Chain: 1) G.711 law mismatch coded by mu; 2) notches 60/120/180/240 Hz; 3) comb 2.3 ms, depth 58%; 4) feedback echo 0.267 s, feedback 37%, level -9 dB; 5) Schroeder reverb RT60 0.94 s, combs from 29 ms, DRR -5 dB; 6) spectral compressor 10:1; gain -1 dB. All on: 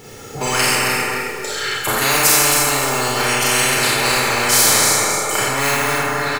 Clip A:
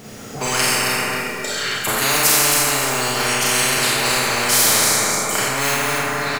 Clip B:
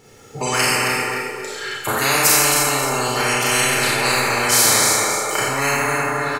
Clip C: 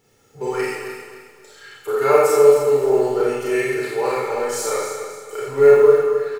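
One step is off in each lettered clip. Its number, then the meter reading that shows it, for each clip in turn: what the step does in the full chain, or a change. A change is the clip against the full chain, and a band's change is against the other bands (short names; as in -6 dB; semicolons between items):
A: 3, loudness change -1.5 LU; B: 1, distortion -24 dB; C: 6, 500 Hz band +19.5 dB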